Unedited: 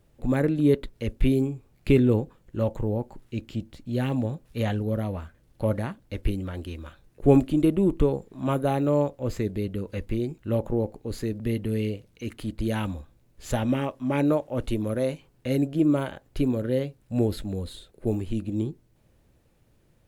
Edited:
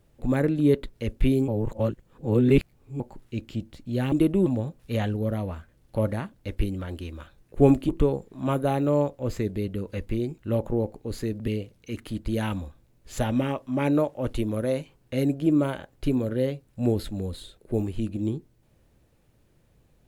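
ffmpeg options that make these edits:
-filter_complex "[0:a]asplit=7[s0][s1][s2][s3][s4][s5][s6];[s0]atrim=end=1.482[s7];[s1]atrim=start=1.478:end=3.002,asetpts=PTS-STARTPTS,areverse[s8];[s2]atrim=start=2.998:end=4.122[s9];[s3]atrim=start=7.548:end=7.892[s10];[s4]atrim=start=4.118:end=7.552[s11];[s5]atrim=start=7.888:end=11.482[s12];[s6]atrim=start=11.808[s13];[s7][s8]acrossfade=d=0.004:c1=hsin:c2=hsin[s14];[s14][s9]acrossfade=d=0.004:c1=hsin:c2=hsin[s15];[s15][s10]acrossfade=d=0.004:c1=hsin:c2=hsin[s16];[s16][s11]acrossfade=d=0.004:c1=hsin:c2=hsin[s17];[s17][s12]acrossfade=d=0.004:c1=hsin:c2=hsin[s18];[s18][s13]acrossfade=d=0.004:c1=hsin:c2=hsin"

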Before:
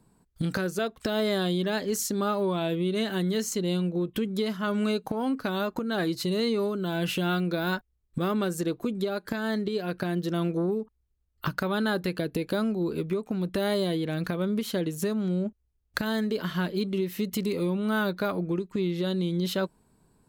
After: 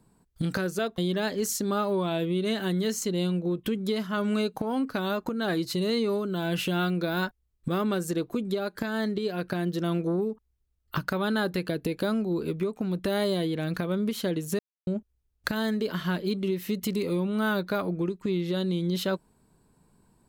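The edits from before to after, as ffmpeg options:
-filter_complex "[0:a]asplit=4[s0][s1][s2][s3];[s0]atrim=end=0.982[s4];[s1]atrim=start=1.478:end=15.09,asetpts=PTS-STARTPTS,afade=t=out:st=13.608:d=0.004:c=hsin[s5];[s2]atrim=start=15.09:end=15.37,asetpts=PTS-STARTPTS,volume=0[s6];[s3]atrim=start=15.37,asetpts=PTS-STARTPTS,afade=t=in:d=0.004:c=hsin[s7];[s5][s6][s7]concat=n=3:v=0:a=1[s8];[s4][s8]acrossfade=d=0.004:c1=hsin:c2=hsin"

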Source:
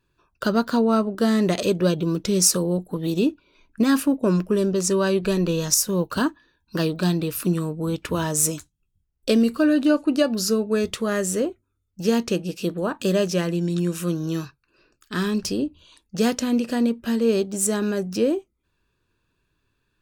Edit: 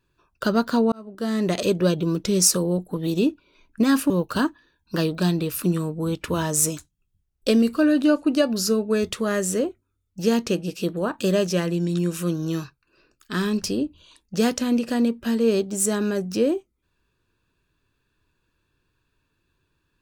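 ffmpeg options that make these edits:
-filter_complex "[0:a]asplit=3[s0][s1][s2];[s0]atrim=end=0.92,asetpts=PTS-STARTPTS,afade=t=out:st=0.916:d=0.004:c=hsin[s3];[s1]atrim=start=0.92:end=4.102,asetpts=PTS-STARTPTS,afade=t=in:d=0.7[s4];[s2]atrim=start=5.908[s5];[s3][s4]concat=n=2:v=0:a=1[s6];[s6][s5]acrossfade=d=0.004:c1=hsin:c2=hsin"

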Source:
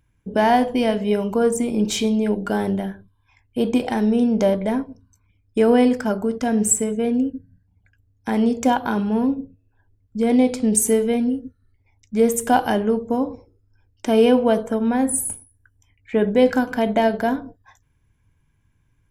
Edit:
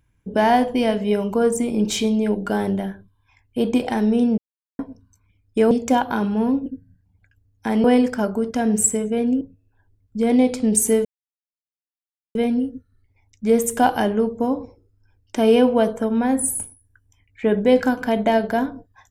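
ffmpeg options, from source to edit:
-filter_complex "[0:a]asplit=8[s0][s1][s2][s3][s4][s5][s6][s7];[s0]atrim=end=4.38,asetpts=PTS-STARTPTS,afade=t=out:st=4.376:d=0.004:c=hsin[s8];[s1]atrim=start=4.38:end=4.79,asetpts=PTS-STARTPTS,volume=0[s9];[s2]atrim=start=4.79:end=5.712,asetpts=PTS-STARTPTS,afade=t=in:d=0.004:c=hsin[s10];[s3]atrim=start=8.458:end=9.412[s11];[s4]atrim=start=7.278:end=8.462[s12];[s5]atrim=start=5.708:end=7.282[s13];[s6]atrim=start=9.408:end=11.05,asetpts=PTS-STARTPTS,afade=t=out:st=1.638:d=0.004:c=hsin,apad=pad_dur=1.3[s14];[s7]atrim=start=11.05,asetpts=PTS-STARTPTS,afade=t=in:d=0.004:c=hsin[s15];[s8][s9][s10]concat=n=3:v=0:a=1[s16];[s16][s11]acrossfade=d=0.004:c1=hsin:c2=hsin[s17];[s17][s12]acrossfade=d=0.004:c1=hsin:c2=hsin[s18];[s18][s13]acrossfade=d=0.004:c1=hsin:c2=hsin[s19];[s14][s15]concat=n=2:v=0:a=1[s20];[s19][s20]acrossfade=d=0.004:c1=hsin:c2=hsin"

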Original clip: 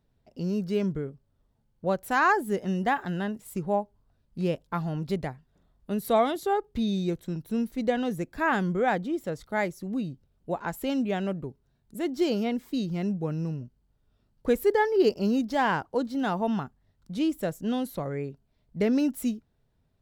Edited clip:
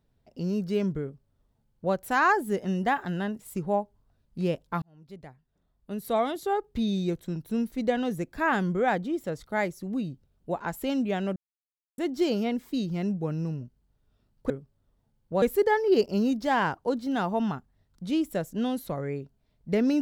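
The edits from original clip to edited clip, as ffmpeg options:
-filter_complex "[0:a]asplit=6[s0][s1][s2][s3][s4][s5];[s0]atrim=end=4.82,asetpts=PTS-STARTPTS,afade=t=out:st=4.816:d=0.004:c=hsin[s6];[s1]atrim=start=4.82:end=11.36,asetpts=PTS-STARTPTS,afade=t=in:d=1.98,afade=t=out:st=6.536:d=0.004:c=hsin[s7];[s2]atrim=start=11.36:end=11.98,asetpts=PTS-STARTPTS,volume=0[s8];[s3]atrim=start=11.98:end=14.502,asetpts=PTS-STARTPTS,afade=t=in:d=0.004:c=hsin[s9];[s4]atrim=start=1.018:end=1.942[s10];[s5]atrim=start=14.498[s11];[s6][s7][s8][s9]concat=n=4:v=0:a=1[s12];[s12][s10]acrossfade=d=0.004:c1=hsin:c2=hsin[s13];[s13][s11]acrossfade=d=0.004:c1=hsin:c2=hsin"

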